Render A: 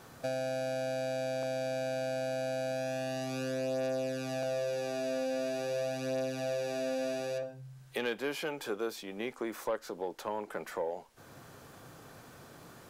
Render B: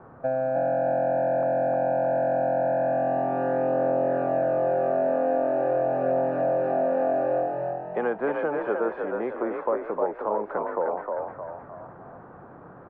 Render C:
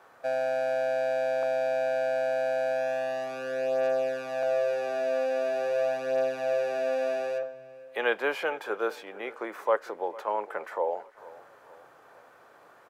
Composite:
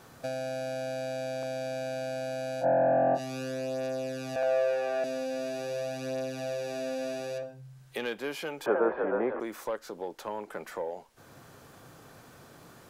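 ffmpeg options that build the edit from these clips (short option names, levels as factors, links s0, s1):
-filter_complex "[1:a]asplit=2[s0][s1];[0:a]asplit=4[s2][s3][s4][s5];[s2]atrim=end=2.66[s6];[s0]atrim=start=2.6:end=3.2[s7];[s3]atrim=start=3.14:end=4.362[s8];[2:a]atrim=start=4.358:end=5.042[s9];[s4]atrim=start=5.038:end=8.662[s10];[s1]atrim=start=8.658:end=9.402[s11];[s5]atrim=start=9.398[s12];[s6][s7]acrossfade=d=0.06:c1=tri:c2=tri[s13];[s13][s8]acrossfade=d=0.06:c1=tri:c2=tri[s14];[s14][s9]acrossfade=d=0.004:c1=hsin:c2=hsin[s15];[s15][s10]acrossfade=d=0.004:c1=hsin:c2=hsin[s16];[s16][s11]acrossfade=d=0.004:c1=hsin:c2=hsin[s17];[s17][s12]acrossfade=d=0.004:c1=hsin:c2=hsin"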